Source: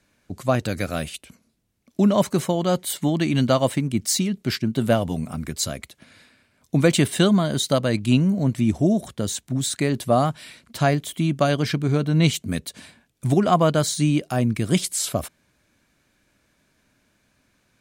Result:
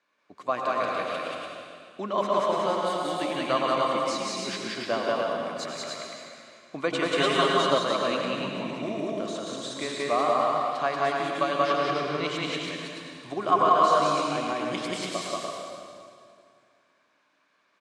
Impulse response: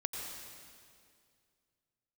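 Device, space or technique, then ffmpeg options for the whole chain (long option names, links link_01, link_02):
station announcement: -filter_complex "[0:a]highpass=460,lowpass=4100,equalizer=frequency=1100:width_type=o:width=0.26:gain=11,aecho=1:1:183.7|291.5:0.891|0.631[link_01];[1:a]atrim=start_sample=2205[link_02];[link_01][link_02]afir=irnorm=-1:irlink=0,asettb=1/sr,asplit=3[link_03][link_04][link_05];[link_03]atrim=end=7.174[link_06];[link_04]atrim=start=7.17:end=7.78,asetpts=PTS-STARTPTS,afade=type=in:duration=0.004:curve=qsin,afade=type=out:start_time=0.606:duration=0.004:curve=qsin,aecho=1:1:7.3:0.93,atrim=end_sample=26901[link_07];[link_05]atrim=start=7.776[link_08];[link_06][link_07]acrossfade=duration=0.004:curve1=hsin:curve2=qsin[link_09];[link_09][link_08]acrossfade=duration=0.004:curve1=qsin:curve2=hsin,volume=-6dB"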